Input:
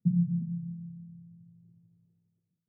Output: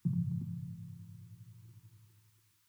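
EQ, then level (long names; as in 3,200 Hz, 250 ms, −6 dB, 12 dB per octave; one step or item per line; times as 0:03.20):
drawn EQ curve 100 Hz 0 dB, 180 Hz −26 dB, 330 Hz −4 dB, 610 Hz −22 dB, 940 Hz +9 dB
+14.5 dB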